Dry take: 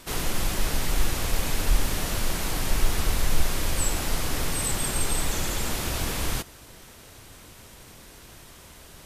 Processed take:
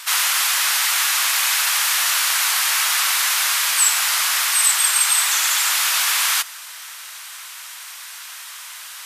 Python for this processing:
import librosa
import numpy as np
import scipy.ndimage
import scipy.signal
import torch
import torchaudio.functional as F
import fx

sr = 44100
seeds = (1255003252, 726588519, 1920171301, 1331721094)

p1 = scipy.signal.sosfilt(scipy.signal.butter(4, 1100.0, 'highpass', fs=sr, output='sos'), x)
p2 = fx.rider(p1, sr, range_db=10, speed_s=0.5)
p3 = p1 + (p2 * librosa.db_to_amplitude(-2.0))
y = p3 * librosa.db_to_amplitude(9.0)